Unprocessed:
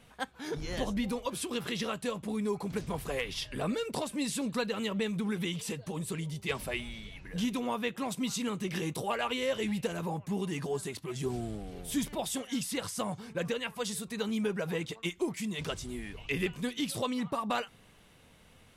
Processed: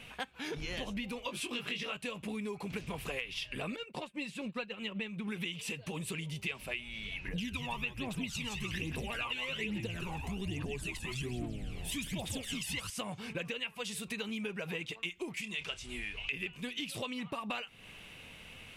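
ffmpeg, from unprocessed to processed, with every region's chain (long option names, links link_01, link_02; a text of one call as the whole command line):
ffmpeg -i in.wav -filter_complex "[0:a]asettb=1/sr,asplit=3[link_01][link_02][link_03];[link_01]atrim=end=1.224[link_04];[link_02]atrim=start=1.22:end=1.97,asetpts=PTS-STARTPTS,afade=type=in:duration=0.004:curve=qsin,afade=type=out:start_time=0.746:duration=0.004:curve=qsin,highpass=50,highshelf=frequency=12000:gain=-7,asplit=2[link_05][link_06];[link_06]adelay=20,volume=-3.5dB[link_07];[link_05][link_07]amix=inputs=2:normalize=0,atrim=end_sample=33075[link_08];[link_03]atrim=start=1.966[link_09];[link_04][link_08]acrossfade=duration=0.004:curve1=hsin:curve2=qsin[link_10];[link_10][link_09]acrossfade=duration=0.004:curve1=qsin:curve2=hsin,asettb=1/sr,asplit=3[link_11][link_12][link_13];[link_11]atrim=end=3.764[link_14];[link_12]atrim=start=3.76:end=5.28,asetpts=PTS-STARTPTS,afade=type=in:duration=0.004:curve=qsin,afade=type=out:start_time=1.516:duration=0.004:curve=qsin,agate=range=-33dB:threshold=-29dB:ratio=3:release=100:detection=peak,highshelf=frequency=4200:gain=-10.5,aecho=1:1:5.6:0.35,atrim=end_sample=67032[link_15];[link_13]atrim=start=5.276[link_16];[link_14][link_15]acrossfade=duration=0.004:curve1=hsin:curve2=qsin[link_17];[link_17][link_16]acrossfade=duration=0.004:curve1=qsin:curve2=hsin,asettb=1/sr,asplit=3[link_18][link_19][link_20];[link_18]atrim=end=7.284[link_21];[link_19]atrim=start=7.28:end=12.9,asetpts=PTS-STARTPTS,afade=type=in:duration=0.004:curve=qsin,afade=type=out:start_time=5.616:duration=0.004:curve=qsin,asplit=5[link_22][link_23][link_24][link_25][link_26];[link_23]adelay=170,afreqshift=-98,volume=-6.5dB[link_27];[link_24]adelay=340,afreqshift=-196,volume=-15.4dB[link_28];[link_25]adelay=510,afreqshift=-294,volume=-24.2dB[link_29];[link_26]adelay=680,afreqshift=-392,volume=-33.1dB[link_30];[link_22][link_27][link_28][link_29][link_30]amix=inputs=5:normalize=0,atrim=end_sample=247842,aphaser=in_gain=1:out_gain=1:delay=1.2:decay=0.65:speed=1.2:type=triangular[link_31];[link_20]atrim=start=12.896[link_32];[link_21][link_31]acrossfade=duration=0.004:curve1=hsin:curve2=qsin[link_33];[link_33][link_32]acrossfade=duration=0.004:curve1=qsin:curve2=hsin,asettb=1/sr,asplit=3[link_34][link_35][link_36];[link_34]atrim=end=15.414[link_37];[link_35]atrim=start=15.41:end=16.33,asetpts=PTS-STARTPTS,afade=type=in:duration=0.004:curve=qsin,afade=type=out:start_time=0.916:duration=0.004:curve=qsin,lowpass=9900,equalizer=frequency=200:width_type=o:width=2.9:gain=-8,asplit=2[link_38][link_39];[link_39]adelay=29,volume=-13dB[link_40];[link_38][link_40]amix=inputs=2:normalize=0,atrim=end_sample=40572[link_41];[link_36]atrim=start=16.326[link_42];[link_37][link_41]acrossfade=duration=0.004:curve1=hsin:curve2=qsin[link_43];[link_43][link_42]acrossfade=duration=0.004:curve1=qsin:curve2=hsin,equalizer=frequency=2600:width=2.1:gain=13.5,acompressor=threshold=-41dB:ratio=5,volume=4dB" out.wav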